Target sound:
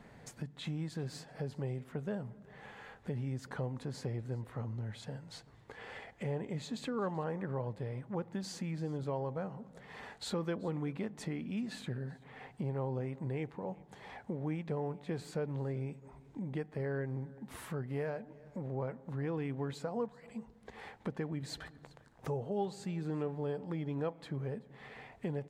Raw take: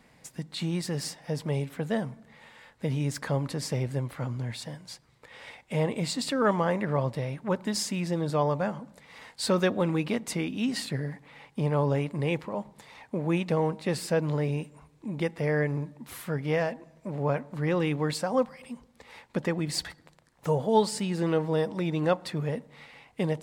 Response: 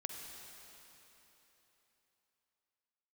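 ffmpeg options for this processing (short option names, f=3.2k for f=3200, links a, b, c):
-af "highshelf=f=2.4k:g=-10.5,acompressor=threshold=-51dB:ratio=2,aecho=1:1:351:0.0668,asetrate=40517,aresample=44100,volume=4.5dB"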